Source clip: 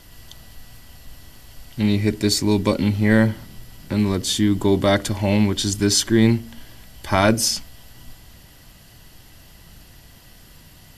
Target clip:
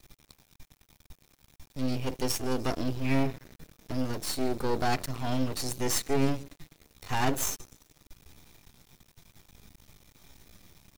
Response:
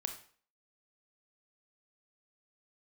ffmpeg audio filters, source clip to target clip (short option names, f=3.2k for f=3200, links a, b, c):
-filter_complex "[0:a]asplit=5[a][b][c][d][e];[b]adelay=146,afreqshift=-120,volume=-24dB[f];[c]adelay=292,afreqshift=-240,volume=-28.4dB[g];[d]adelay=438,afreqshift=-360,volume=-32.9dB[h];[e]adelay=584,afreqshift=-480,volume=-37.3dB[i];[a][f][g][h][i]amix=inputs=5:normalize=0,asetrate=53981,aresample=44100,atempo=0.816958,aeval=exprs='max(val(0),0)':c=same,volume=-6dB"